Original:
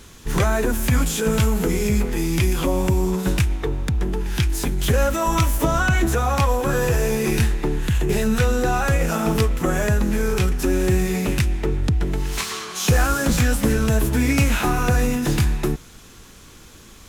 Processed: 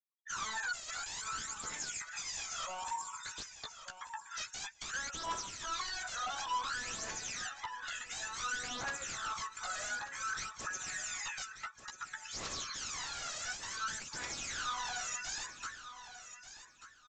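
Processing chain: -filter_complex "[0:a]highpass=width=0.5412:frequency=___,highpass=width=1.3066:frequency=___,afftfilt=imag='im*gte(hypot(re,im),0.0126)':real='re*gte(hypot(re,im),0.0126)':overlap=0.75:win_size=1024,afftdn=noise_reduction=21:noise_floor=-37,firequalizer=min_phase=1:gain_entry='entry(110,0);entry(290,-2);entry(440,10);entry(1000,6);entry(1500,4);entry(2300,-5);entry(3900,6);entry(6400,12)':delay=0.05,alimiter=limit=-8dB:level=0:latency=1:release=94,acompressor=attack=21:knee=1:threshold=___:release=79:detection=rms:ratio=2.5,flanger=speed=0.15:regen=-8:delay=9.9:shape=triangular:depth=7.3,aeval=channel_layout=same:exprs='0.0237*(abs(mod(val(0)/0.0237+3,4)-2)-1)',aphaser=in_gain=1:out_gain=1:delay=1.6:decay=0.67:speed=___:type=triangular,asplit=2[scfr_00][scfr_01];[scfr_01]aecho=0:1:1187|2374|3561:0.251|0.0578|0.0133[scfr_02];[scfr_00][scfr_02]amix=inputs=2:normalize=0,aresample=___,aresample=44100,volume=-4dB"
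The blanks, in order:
1100, 1100, -30dB, 0.56, 16000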